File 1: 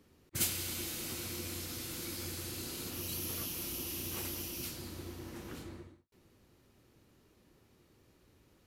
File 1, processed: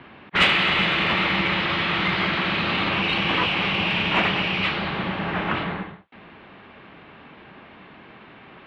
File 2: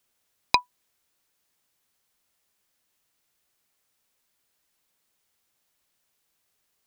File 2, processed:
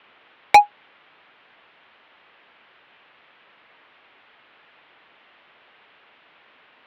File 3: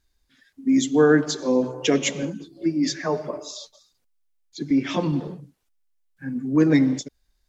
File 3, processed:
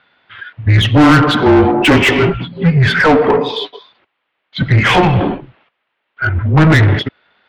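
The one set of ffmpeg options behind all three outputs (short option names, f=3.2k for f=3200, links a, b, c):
-filter_complex "[0:a]highpass=f=170:t=q:w=0.5412,highpass=f=170:t=q:w=1.307,lowpass=f=3.4k:t=q:w=0.5176,lowpass=f=3.4k:t=q:w=0.7071,lowpass=f=3.4k:t=q:w=1.932,afreqshift=-160,asplit=2[a][b];[b]highpass=f=720:p=1,volume=32dB,asoftclip=type=tanh:threshold=-5.5dB[c];[a][c]amix=inputs=2:normalize=0,lowpass=f=2.4k:p=1,volume=-6dB,volume=5dB"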